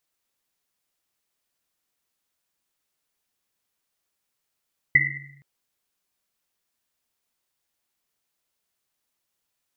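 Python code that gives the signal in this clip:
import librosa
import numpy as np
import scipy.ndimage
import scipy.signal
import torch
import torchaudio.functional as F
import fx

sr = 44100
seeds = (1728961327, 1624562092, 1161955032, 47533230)

y = fx.risset_drum(sr, seeds[0], length_s=0.47, hz=140.0, decay_s=1.23, noise_hz=2000.0, noise_width_hz=160.0, noise_pct=75)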